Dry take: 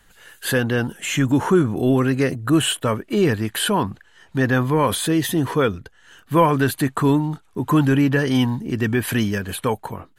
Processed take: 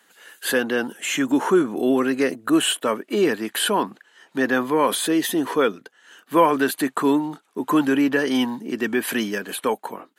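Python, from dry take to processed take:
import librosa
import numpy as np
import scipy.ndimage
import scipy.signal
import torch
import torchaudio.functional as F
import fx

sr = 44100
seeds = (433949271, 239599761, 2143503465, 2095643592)

y = scipy.signal.sosfilt(scipy.signal.butter(4, 240.0, 'highpass', fs=sr, output='sos'), x)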